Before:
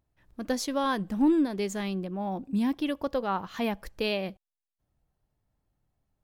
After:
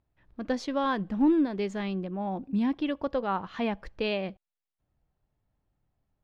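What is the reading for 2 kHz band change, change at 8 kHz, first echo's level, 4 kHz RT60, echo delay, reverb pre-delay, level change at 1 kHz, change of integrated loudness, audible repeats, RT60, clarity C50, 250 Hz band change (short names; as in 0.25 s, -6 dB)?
-0.5 dB, under -10 dB, none, none, none, none, 0.0 dB, 0.0 dB, none, none, none, 0.0 dB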